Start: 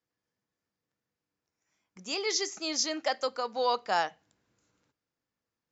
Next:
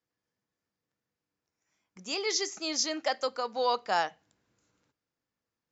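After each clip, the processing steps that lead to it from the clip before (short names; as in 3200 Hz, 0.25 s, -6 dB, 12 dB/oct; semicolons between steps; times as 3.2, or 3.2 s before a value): nothing audible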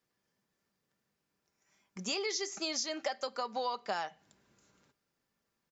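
comb 5.1 ms, depth 36%; compressor 10:1, threshold -37 dBFS, peak gain reduction 15.5 dB; gain +5 dB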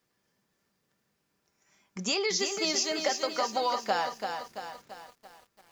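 lo-fi delay 0.337 s, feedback 55%, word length 10-bit, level -6 dB; gain +6 dB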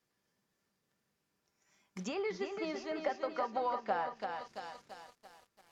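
short-mantissa float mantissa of 2-bit; treble ducked by the level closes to 1700 Hz, closed at -28 dBFS; gain -5 dB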